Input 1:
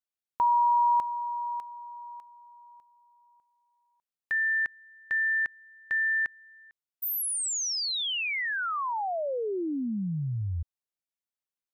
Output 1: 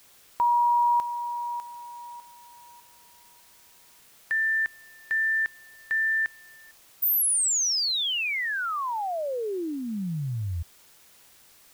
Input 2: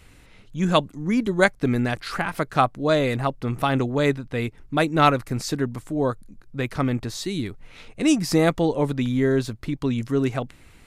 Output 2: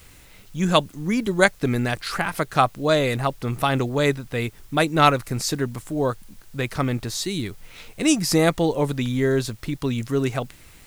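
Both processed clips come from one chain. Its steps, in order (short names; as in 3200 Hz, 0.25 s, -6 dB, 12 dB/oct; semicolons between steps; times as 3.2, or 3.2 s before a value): high shelf 4300 Hz +7 dB; in parallel at -4 dB: requantised 8-bit, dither triangular; on the sum: bell 260 Hz -3 dB 0.43 oct; gain -3.5 dB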